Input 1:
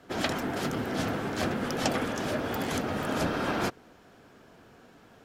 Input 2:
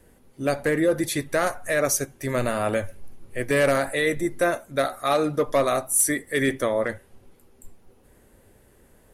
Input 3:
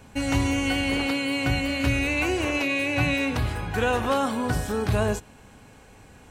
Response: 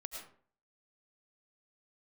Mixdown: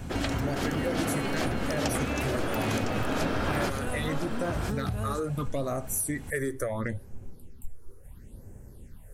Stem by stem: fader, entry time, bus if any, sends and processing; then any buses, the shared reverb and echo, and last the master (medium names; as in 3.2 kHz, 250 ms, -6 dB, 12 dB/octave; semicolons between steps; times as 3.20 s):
+2.0 dB, 0.00 s, no bus, no send, echo send -16 dB, level rider gain up to 10.5 dB; auto duck -7 dB, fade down 0.75 s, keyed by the second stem
-0.5 dB, 0.00 s, bus A, no send, no echo send, phase shifter stages 6, 0.73 Hz, lowest notch 180–3900 Hz
+2.0 dB, 0.00 s, bus A, no send, echo send -20.5 dB, compression, threshold -31 dBFS, peak gain reduction 12.5 dB
bus A: 0.0 dB, tone controls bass +12 dB, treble +3 dB; compression, threshold -23 dBFS, peak gain reduction 9.5 dB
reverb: none
echo: delay 1007 ms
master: compression 2:1, threshold -29 dBFS, peak gain reduction 6.5 dB